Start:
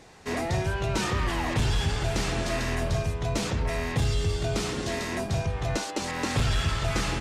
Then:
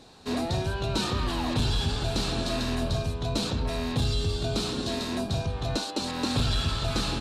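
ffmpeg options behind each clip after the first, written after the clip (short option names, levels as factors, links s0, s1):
-af "equalizer=f=250:t=o:w=0.33:g=7,equalizer=f=2000:t=o:w=0.33:g=-11,equalizer=f=4000:t=o:w=0.33:g=11,equalizer=f=6300:t=o:w=0.33:g=-3,volume=0.841"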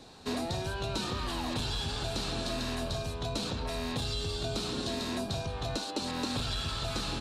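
-filter_complex "[0:a]acrossover=split=430|4700[s0][s1][s2];[s0]acompressor=threshold=0.0178:ratio=4[s3];[s1]acompressor=threshold=0.0158:ratio=4[s4];[s2]acompressor=threshold=0.00708:ratio=4[s5];[s3][s4][s5]amix=inputs=3:normalize=0"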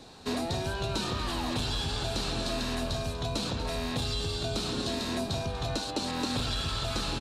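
-af "aecho=1:1:242:0.237,volume=1.26"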